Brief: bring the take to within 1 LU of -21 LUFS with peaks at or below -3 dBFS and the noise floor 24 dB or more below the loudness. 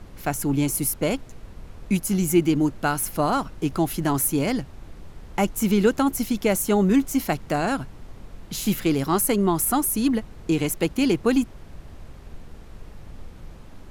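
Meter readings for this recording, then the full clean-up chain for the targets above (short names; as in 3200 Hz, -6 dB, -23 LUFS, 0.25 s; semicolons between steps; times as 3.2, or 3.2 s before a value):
noise floor -44 dBFS; noise floor target -47 dBFS; loudness -23.0 LUFS; peak -7.5 dBFS; loudness target -21.0 LUFS
-> noise print and reduce 6 dB; gain +2 dB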